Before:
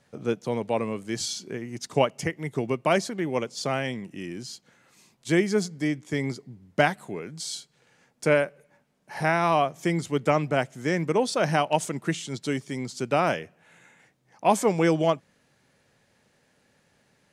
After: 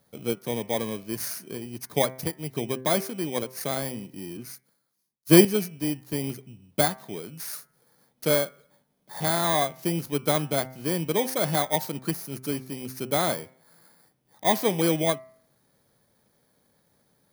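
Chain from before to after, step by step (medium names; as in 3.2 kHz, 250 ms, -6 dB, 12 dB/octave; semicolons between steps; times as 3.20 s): bit-reversed sample order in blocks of 16 samples; de-hum 129.7 Hz, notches 18; 4.37–5.45 s: three bands expanded up and down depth 100%; trim -1.5 dB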